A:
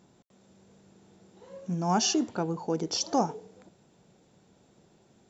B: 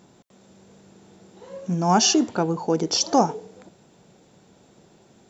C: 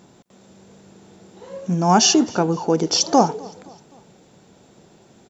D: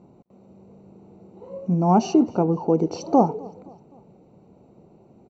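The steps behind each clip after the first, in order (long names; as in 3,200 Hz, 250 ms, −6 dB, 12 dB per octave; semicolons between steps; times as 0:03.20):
low-shelf EQ 160 Hz −3.5 dB; level +8 dB
repeating echo 258 ms, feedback 48%, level −24 dB; level +3.5 dB
moving average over 26 samples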